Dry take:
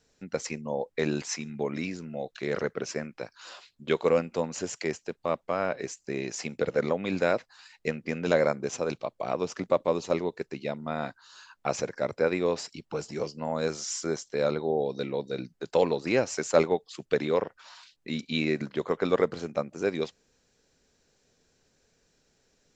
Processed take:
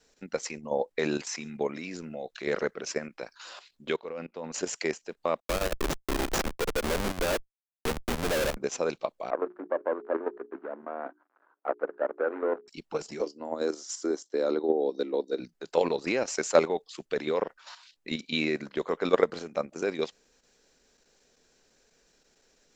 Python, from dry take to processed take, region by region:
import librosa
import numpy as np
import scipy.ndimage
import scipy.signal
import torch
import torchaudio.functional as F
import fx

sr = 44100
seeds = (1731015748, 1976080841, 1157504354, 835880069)

y = fx.chain(x, sr, fx.peak_eq(hz=7500.0, db=-14.0, octaves=0.66),
    fx.level_steps(step_db=19), at=(3.96, 4.52))
y = fx.chain(y, sr, fx.delta_hold(step_db=-35.5),
    fx.schmitt(flips_db=-36.0),
    fx.band_squash(depth_pct=40), at=(5.4, 8.57))
y = fx.chain(y, sr, fx.dead_time(dead_ms=0.25),
    fx.cheby1_bandpass(low_hz=280.0, high_hz=1500.0, order=3),
    fx.hum_notches(base_hz=60, count=7), at=(9.3, 12.68))
y = fx.chain(y, sr, fx.highpass_res(hz=300.0, q=3.3),
    fx.peak_eq(hz=2400.0, db=-7.0, octaves=0.6),
    fx.upward_expand(threshold_db=-31.0, expansion=1.5), at=(13.21, 15.4))
y = fx.level_steps(y, sr, step_db=10)
y = fx.peak_eq(y, sr, hz=100.0, db=-12.5, octaves=1.6)
y = F.gain(torch.from_numpy(y), 5.0).numpy()